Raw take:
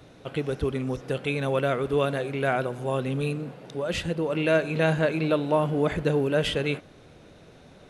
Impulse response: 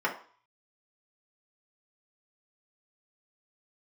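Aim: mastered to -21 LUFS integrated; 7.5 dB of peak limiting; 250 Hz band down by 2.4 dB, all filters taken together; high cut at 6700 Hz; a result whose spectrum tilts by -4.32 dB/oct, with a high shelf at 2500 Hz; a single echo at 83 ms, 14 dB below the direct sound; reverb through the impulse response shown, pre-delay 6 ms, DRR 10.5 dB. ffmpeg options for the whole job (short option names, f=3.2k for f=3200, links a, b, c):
-filter_complex "[0:a]lowpass=6.7k,equalizer=f=250:t=o:g=-3.5,highshelf=f=2.5k:g=5,alimiter=limit=-17dB:level=0:latency=1,aecho=1:1:83:0.2,asplit=2[a][b];[1:a]atrim=start_sample=2205,adelay=6[c];[b][c]afir=irnorm=-1:irlink=0,volume=-21.5dB[d];[a][d]amix=inputs=2:normalize=0,volume=7.5dB"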